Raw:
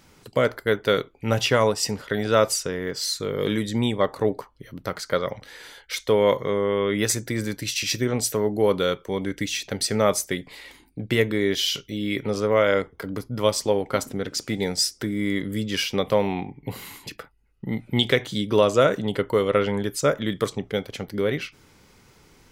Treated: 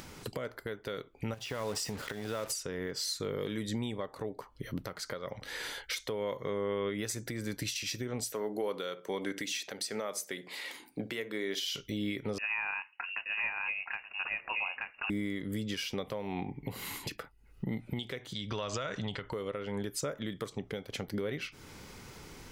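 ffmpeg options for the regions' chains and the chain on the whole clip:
ffmpeg -i in.wav -filter_complex "[0:a]asettb=1/sr,asplit=3[link_01][link_02][link_03];[link_01]atrim=end=1.344[link_04];[link_02]atrim=start=1.34:end=2.52,asetpts=PTS-STARTPTS,afade=type=in:duration=0.004:curve=qsin,afade=type=out:start_time=1.176:duration=0.004:curve=qsin,acompressor=threshold=-27dB:ratio=20:attack=3.2:release=140:knee=1:detection=peak,acrusher=bits=6:mix=0:aa=0.5[link_05];[link_03]atrim=start=2.516[link_06];[link_04][link_05]acrossfade=duration=0.004:curve1=hsin:curve2=qsin[link_07];[link_07][link_06]acrossfade=duration=0.004:curve1=qsin:curve2=hsin,asettb=1/sr,asplit=3[link_08][link_09][link_10];[link_08]atrim=end=8.334[link_11];[link_09]atrim=start=8.33:end=11.64,asetpts=PTS-STARTPTS,afade=type=in:duration=0.004:curve=qsin,afade=type=out:start_time=3.306:duration=0.004:curve=qsin,highpass=170,lowshelf=frequency=260:gain=-10.5,asplit=2[link_12][link_13];[link_13]adelay=61,lowpass=frequency=810:poles=1,volume=-14.5dB,asplit=2[link_14][link_15];[link_15]adelay=61,lowpass=frequency=810:poles=1,volume=0.27,asplit=2[link_16][link_17];[link_17]adelay=61,lowpass=frequency=810:poles=1,volume=0.27[link_18];[link_12][link_14][link_16][link_18]amix=inputs=4:normalize=0,atrim=end_sample=145971[link_19];[link_10]atrim=start=11.636[link_20];[link_11][link_19]acrossfade=duration=0.004:curve1=hsin:curve2=qsin[link_21];[link_21][link_20]acrossfade=duration=0.004:curve1=qsin:curve2=hsin,asettb=1/sr,asplit=3[link_22][link_23][link_24];[link_22]atrim=end=12.384[link_25];[link_23]atrim=start=12.38:end=15.1,asetpts=PTS-STARTPTS,afade=type=in:duration=0.004:curve=qsin,afade=type=out:start_time=2.716:duration=0.004:curve=qsin,highpass=frequency=850:poles=1,aecho=1:1:876:0.562,atrim=end_sample=119952,lowpass=frequency=2600:width_type=q:width=0.5098,lowpass=frequency=2600:width_type=q:width=0.6013,lowpass=frequency=2600:width_type=q:width=0.9,lowpass=frequency=2600:width_type=q:width=2.563,afreqshift=-3000[link_26];[link_24]atrim=start=15.096[link_27];[link_25][link_26]acrossfade=duration=0.004:curve1=hsin:curve2=qsin[link_28];[link_28][link_27]acrossfade=duration=0.004:curve1=qsin:curve2=hsin,asettb=1/sr,asplit=3[link_29][link_30][link_31];[link_29]atrim=end=18.334[link_32];[link_30]atrim=start=18.33:end=19.32,asetpts=PTS-STARTPTS,afade=type=in:duration=0.004:curve=qsin,afade=type=out:start_time=0.986:duration=0.004:curve=qsin,lowpass=frequency=6400:width=0.5412,lowpass=frequency=6400:width=1.3066,acompressor=threshold=-23dB:ratio=5:attack=3.2:release=140:knee=1:detection=peak,equalizer=frequency=340:width=0.57:gain=-12.5[link_33];[link_31]atrim=start=19.316[link_34];[link_32][link_33]acrossfade=duration=0.004:curve1=hsin:curve2=qsin[link_35];[link_35][link_34]acrossfade=duration=0.004:curve1=qsin:curve2=hsin,acompressor=threshold=-32dB:ratio=4,alimiter=level_in=4dB:limit=-24dB:level=0:latency=1:release=448,volume=-4dB,acompressor=mode=upward:threshold=-48dB:ratio=2.5,volume=3.5dB" out.wav

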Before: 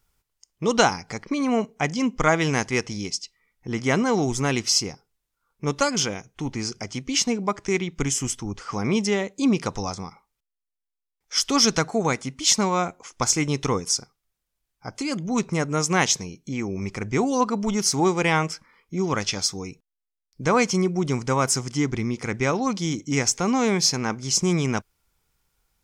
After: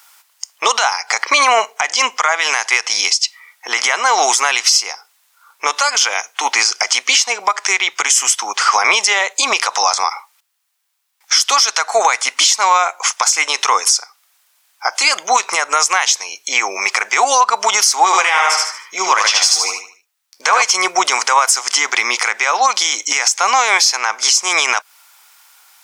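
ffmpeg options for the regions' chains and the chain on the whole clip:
ffmpeg -i in.wav -filter_complex "[0:a]asettb=1/sr,asplit=3[link_01][link_02][link_03];[link_01]atrim=end=18.054[link_04];[link_02]atrim=start=18.05:end=20.62,asetpts=PTS-STARTPTS,afade=type=in:duration=0.004:curve=qsin,afade=type=out:start_time=2.566:duration=0.004:curve=qsin,flanger=delay=4.2:depth=9.5:regen=46:speed=1.1:shape=triangular,aecho=1:1:75|150|225|300:0.631|0.215|0.0729|0.0248,atrim=end_sample=113337[link_05];[link_03]atrim=start=20.616[link_06];[link_04][link_05]acrossfade=duration=0.004:curve1=hsin:curve2=qsin[link_07];[link_07][link_06]acrossfade=duration=0.004:curve1=qsin:curve2=hsin,highpass=frequency=790:width=0.5412,highpass=frequency=790:width=1.3066,acompressor=threshold=-32dB:ratio=16,alimiter=level_in=27.5dB:limit=-1dB:release=50:level=0:latency=1,volume=-1dB" out.wav

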